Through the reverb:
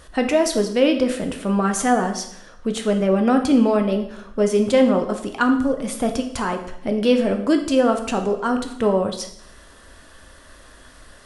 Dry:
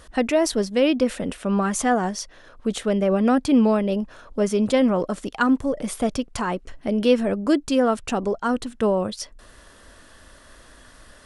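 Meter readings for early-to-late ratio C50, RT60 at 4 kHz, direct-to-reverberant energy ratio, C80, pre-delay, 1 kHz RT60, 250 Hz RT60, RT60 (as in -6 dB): 9.0 dB, 0.70 s, 5.0 dB, 12.0 dB, 6 ms, 0.70 s, 0.75 s, 0.70 s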